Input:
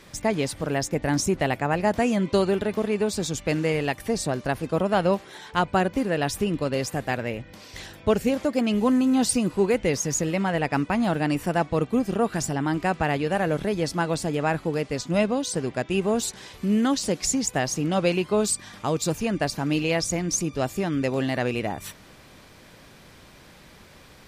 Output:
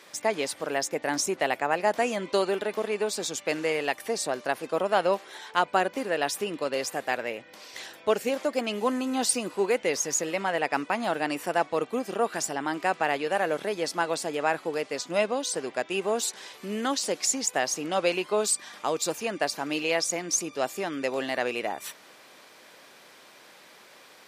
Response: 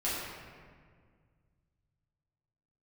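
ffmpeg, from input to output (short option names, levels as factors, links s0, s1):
-af "highpass=430"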